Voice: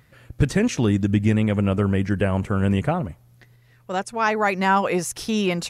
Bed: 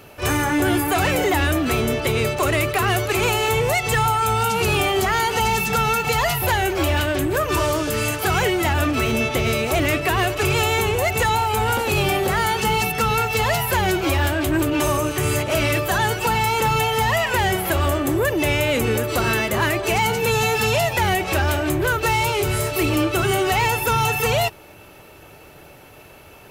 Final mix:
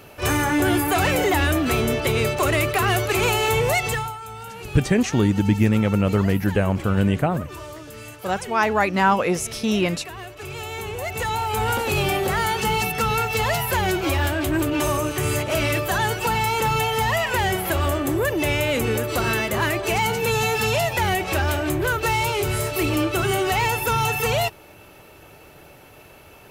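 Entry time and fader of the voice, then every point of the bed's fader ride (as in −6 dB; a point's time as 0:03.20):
4.35 s, +1.0 dB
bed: 0:03.84 −0.5 dB
0:04.20 −16.5 dB
0:10.31 −16.5 dB
0:11.64 −2 dB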